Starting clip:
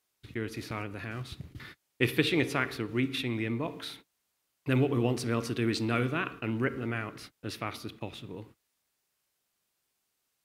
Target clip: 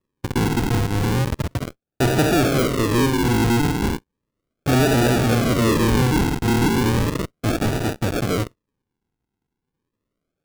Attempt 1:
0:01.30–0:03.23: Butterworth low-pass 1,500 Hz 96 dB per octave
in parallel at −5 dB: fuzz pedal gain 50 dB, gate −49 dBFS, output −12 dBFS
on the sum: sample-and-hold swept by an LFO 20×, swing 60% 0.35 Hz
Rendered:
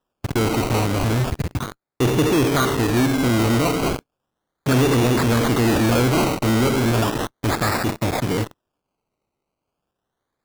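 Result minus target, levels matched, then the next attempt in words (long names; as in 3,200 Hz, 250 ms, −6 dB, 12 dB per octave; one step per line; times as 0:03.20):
sample-and-hold swept by an LFO: distortion −9 dB
0:01.30–0:03.23: Butterworth low-pass 1,500 Hz 96 dB per octave
in parallel at −5 dB: fuzz pedal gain 50 dB, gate −49 dBFS, output −12 dBFS
on the sum: sample-and-hold swept by an LFO 58×, swing 60% 0.35 Hz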